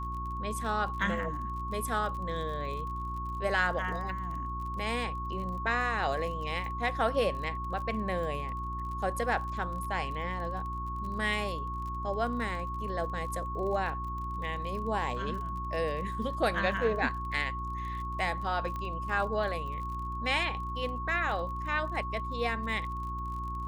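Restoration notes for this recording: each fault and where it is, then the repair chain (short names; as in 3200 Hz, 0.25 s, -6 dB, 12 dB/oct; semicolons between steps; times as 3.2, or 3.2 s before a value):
crackle 33/s -39 dBFS
hum 60 Hz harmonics 6 -38 dBFS
tone 1100 Hz -36 dBFS
18.76 pop -25 dBFS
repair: de-click; de-hum 60 Hz, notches 6; notch 1100 Hz, Q 30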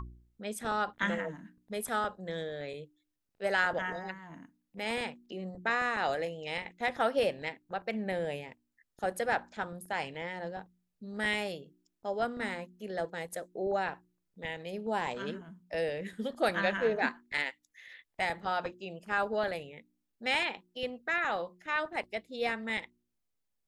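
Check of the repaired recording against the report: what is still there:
none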